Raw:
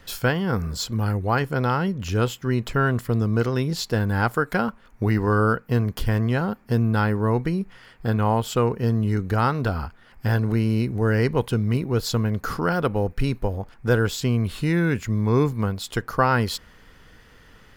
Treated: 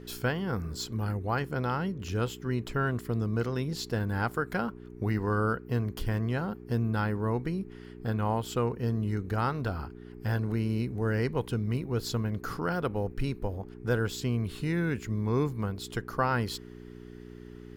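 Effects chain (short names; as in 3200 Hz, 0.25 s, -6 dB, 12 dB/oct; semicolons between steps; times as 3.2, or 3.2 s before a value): buzz 60 Hz, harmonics 7, -38 dBFS 0 dB/oct; gain -8 dB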